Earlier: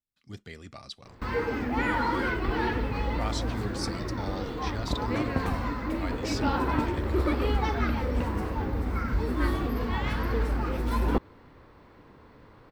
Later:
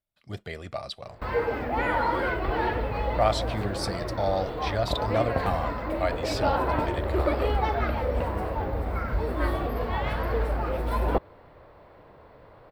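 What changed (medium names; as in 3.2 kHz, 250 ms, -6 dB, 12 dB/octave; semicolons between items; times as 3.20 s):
speech +6.5 dB; master: add fifteen-band graphic EQ 250 Hz -7 dB, 630 Hz +11 dB, 6.3 kHz -9 dB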